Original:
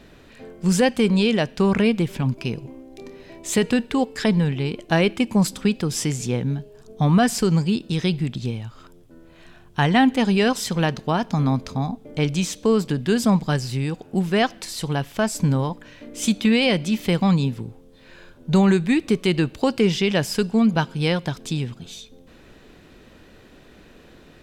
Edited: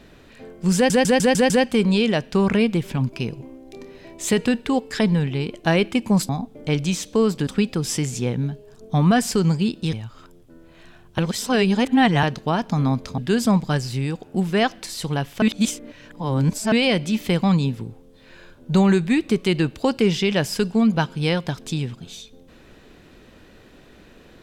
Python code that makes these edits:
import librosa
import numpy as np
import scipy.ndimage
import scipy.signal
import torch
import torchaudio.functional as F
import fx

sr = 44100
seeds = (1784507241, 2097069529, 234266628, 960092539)

y = fx.edit(x, sr, fx.stutter(start_s=0.75, slice_s=0.15, count=6),
    fx.cut(start_s=8.0, length_s=0.54),
    fx.reverse_span(start_s=9.79, length_s=1.05),
    fx.move(start_s=11.79, length_s=1.18, to_s=5.54),
    fx.reverse_span(start_s=15.21, length_s=1.3), tone=tone)